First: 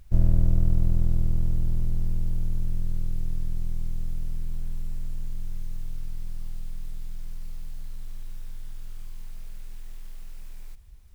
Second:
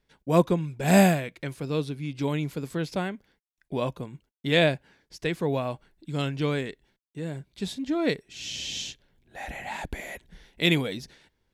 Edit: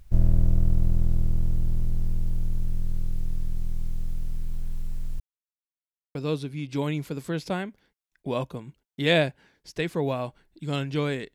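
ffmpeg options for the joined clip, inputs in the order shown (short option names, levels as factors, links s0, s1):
-filter_complex "[0:a]apad=whole_dur=11.34,atrim=end=11.34,asplit=2[s0][s1];[s0]atrim=end=5.2,asetpts=PTS-STARTPTS,afade=t=out:st=5.196:d=0.004:c=hsin[s2];[s1]atrim=start=5.2:end=6.15,asetpts=PTS-STARTPTS,volume=0[s3];[1:a]atrim=start=1.61:end=6.8,asetpts=PTS-STARTPTS,afade=t=in:d=0.004:c=hsin[s4];[s2][s3][s4]concat=n=3:v=0:a=1"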